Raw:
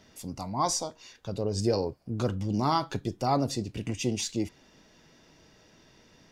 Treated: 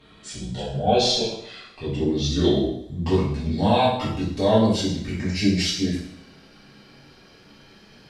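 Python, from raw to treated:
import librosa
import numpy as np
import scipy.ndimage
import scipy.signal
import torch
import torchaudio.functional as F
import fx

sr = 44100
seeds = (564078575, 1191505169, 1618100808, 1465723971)

y = fx.speed_glide(x, sr, from_pct=68, to_pct=88)
y = fx.rev_double_slope(y, sr, seeds[0], early_s=0.64, late_s=1.8, knee_db=-27, drr_db=-8.0)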